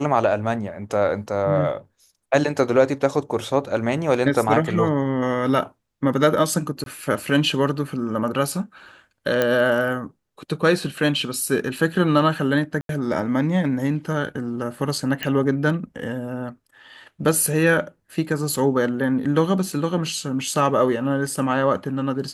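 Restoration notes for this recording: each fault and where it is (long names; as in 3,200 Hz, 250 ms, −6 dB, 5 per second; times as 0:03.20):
0:06.84–0:06.86: drop-out 22 ms
0:09.42: click −7 dBFS
0:12.81–0:12.89: drop-out 82 ms
0:15.23: click −10 dBFS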